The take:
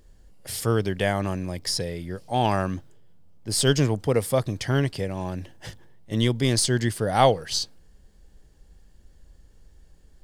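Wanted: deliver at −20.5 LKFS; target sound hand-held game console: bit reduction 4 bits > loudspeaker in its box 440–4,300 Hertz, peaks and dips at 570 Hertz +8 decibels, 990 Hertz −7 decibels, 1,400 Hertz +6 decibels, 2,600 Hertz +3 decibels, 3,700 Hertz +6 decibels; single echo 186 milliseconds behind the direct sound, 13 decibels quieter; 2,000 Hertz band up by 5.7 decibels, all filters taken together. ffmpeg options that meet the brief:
ffmpeg -i in.wav -af "equalizer=frequency=2000:width_type=o:gain=4,aecho=1:1:186:0.224,acrusher=bits=3:mix=0:aa=0.000001,highpass=440,equalizer=frequency=570:width_type=q:width=4:gain=8,equalizer=frequency=990:width_type=q:width=4:gain=-7,equalizer=frequency=1400:width_type=q:width=4:gain=6,equalizer=frequency=2600:width_type=q:width=4:gain=3,equalizer=frequency=3700:width_type=q:width=4:gain=6,lowpass=frequency=4300:width=0.5412,lowpass=frequency=4300:width=1.3066,volume=3dB" out.wav

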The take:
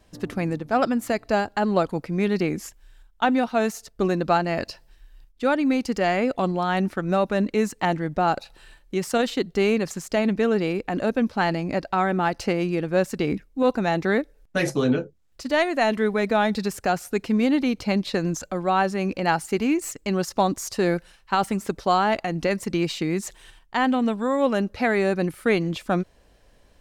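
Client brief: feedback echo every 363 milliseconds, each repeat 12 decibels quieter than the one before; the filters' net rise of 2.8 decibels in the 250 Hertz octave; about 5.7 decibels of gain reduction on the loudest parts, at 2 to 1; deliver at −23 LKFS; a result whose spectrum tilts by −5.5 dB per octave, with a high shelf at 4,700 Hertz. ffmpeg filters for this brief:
ffmpeg -i in.wav -af "equalizer=frequency=250:width_type=o:gain=3.5,highshelf=frequency=4700:gain=-3,acompressor=threshold=-25dB:ratio=2,aecho=1:1:363|726|1089:0.251|0.0628|0.0157,volume=4dB" out.wav

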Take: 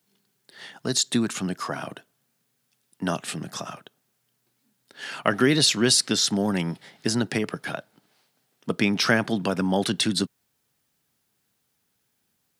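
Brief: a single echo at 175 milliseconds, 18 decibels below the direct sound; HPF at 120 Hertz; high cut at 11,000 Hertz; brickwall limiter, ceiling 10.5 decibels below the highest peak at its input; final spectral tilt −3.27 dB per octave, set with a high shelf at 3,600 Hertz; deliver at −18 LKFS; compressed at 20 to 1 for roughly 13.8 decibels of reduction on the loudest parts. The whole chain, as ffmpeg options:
ffmpeg -i in.wav -af "highpass=120,lowpass=11000,highshelf=frequency=3600:gain=7.5,acompressor=threshold=-24dB:ratio=20,alimiter=limit=-20.5dB:level=0:latency=1,aecho=1:1:175:0.126,volume=14.5dB" out.wav

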